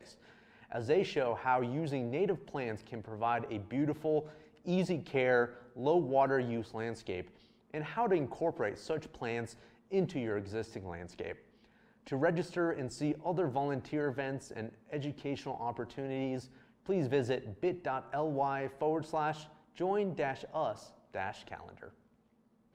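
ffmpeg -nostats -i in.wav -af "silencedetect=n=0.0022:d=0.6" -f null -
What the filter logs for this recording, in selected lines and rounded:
silence_start: 21.91
silence_end: 22.75 | silence_duration: 0.84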